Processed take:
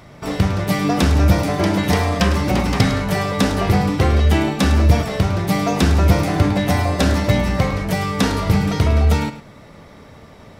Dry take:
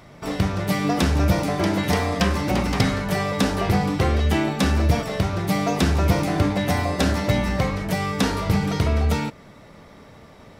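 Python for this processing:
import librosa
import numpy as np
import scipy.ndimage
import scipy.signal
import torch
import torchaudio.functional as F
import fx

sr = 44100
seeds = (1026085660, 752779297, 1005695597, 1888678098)

p1 = fx.peak_eq(x, sr, hz=82.0, db=3.0, octaves=1.3)
p2 = p1 + fx.echo_single(p1, sr, ms=105, db=-12.5, dry=0)
y = F.gain(torch.from_numpy(p2), 3.0).numpy()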